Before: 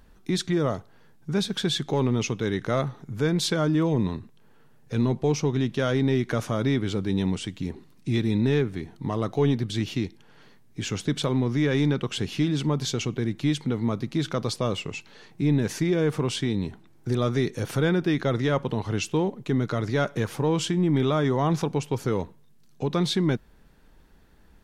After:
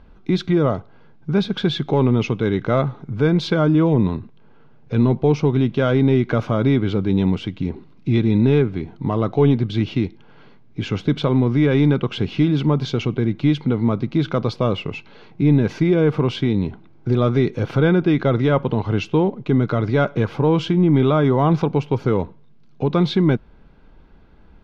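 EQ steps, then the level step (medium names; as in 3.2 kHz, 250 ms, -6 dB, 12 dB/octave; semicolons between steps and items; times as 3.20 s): Butterworth band-stop 1.8 kHz, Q 7.6; distance through air 270 m; +7.5 dB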